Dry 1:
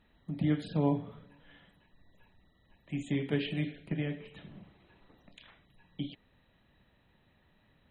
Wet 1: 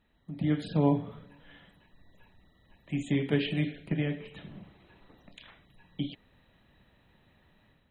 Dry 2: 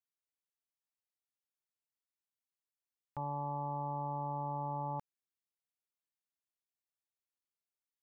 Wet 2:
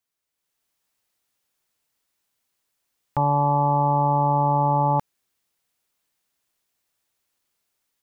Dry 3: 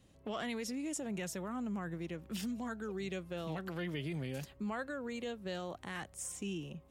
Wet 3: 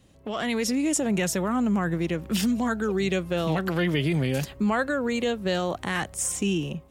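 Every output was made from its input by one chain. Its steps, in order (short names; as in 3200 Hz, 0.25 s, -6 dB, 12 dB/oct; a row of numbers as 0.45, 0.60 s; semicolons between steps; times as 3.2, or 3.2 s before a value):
AGC gain up to 8 dB; normalise peaks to -12 dBFS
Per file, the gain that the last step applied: -4.0, +10.5, +6.5 dB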